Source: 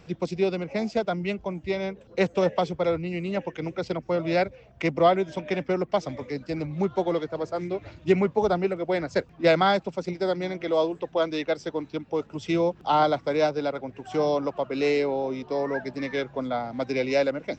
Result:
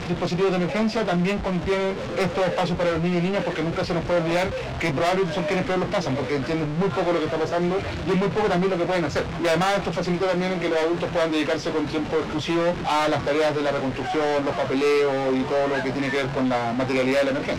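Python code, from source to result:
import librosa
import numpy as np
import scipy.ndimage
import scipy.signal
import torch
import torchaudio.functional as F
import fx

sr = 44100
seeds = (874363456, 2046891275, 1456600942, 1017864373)

y = x + 0.5 * 10.0 ** (-31.5 / 20.0) * np.sign(x)
y = scipy.signal.sosfilt(scipy.signal.butter(2, 4300.0, 'lowpass', fs=sr, output='sos'), y)
y = 10.0 ** (-25.5 / 20.0) * np.tanh(y / 10.0 ** (-25.5 / 20.0))
y = fx.doubler(y, sr, ms=23.0, db=-6.5)
y = y * librosa.db_to_amplitude(6.0)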